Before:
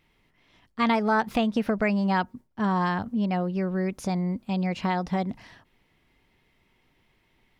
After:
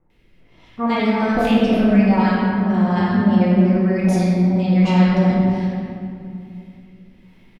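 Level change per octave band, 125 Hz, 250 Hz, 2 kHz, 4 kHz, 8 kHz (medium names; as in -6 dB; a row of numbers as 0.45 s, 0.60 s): +12.5 dB, +12.0 dB, +5.0 dB, +6.5 dB, no reading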